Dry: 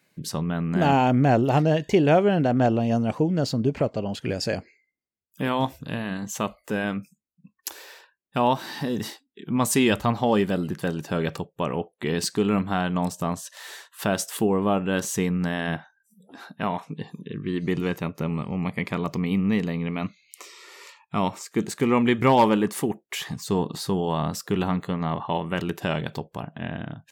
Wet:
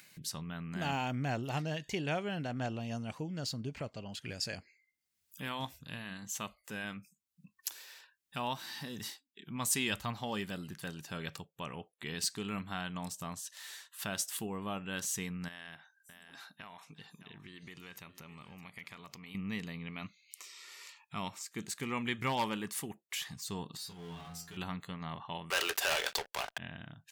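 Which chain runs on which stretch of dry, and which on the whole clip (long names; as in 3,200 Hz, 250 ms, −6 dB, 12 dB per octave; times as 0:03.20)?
0:15.48–0:19.35: low-shelf EQ 340 Hz −9 dB + downward compressor 3 to 1, threshold −34 dBFS + single-tap delay 611 ms −16 dB
0:23.77–0:24.57: stiff-string resonator 84 Hz, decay 0.53 s, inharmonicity 0.002 + power curve on the samples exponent 0.7
0:25.50–0:26.58: Butterworth high-pass 420 Hz + leveller curve on the samples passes 5
whole clip: guitar amp tone stack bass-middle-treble 5-5-5; upward compression, threshold −47 dBFS; level +1 dB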